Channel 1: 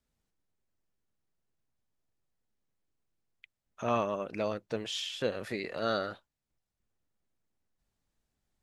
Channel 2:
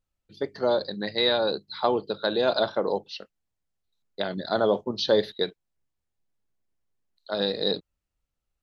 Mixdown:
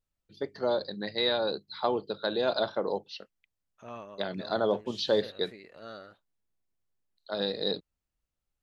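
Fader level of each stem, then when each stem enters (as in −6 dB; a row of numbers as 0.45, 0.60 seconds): −13.5, −4.5 decibels; 0.00, 0.00 seconds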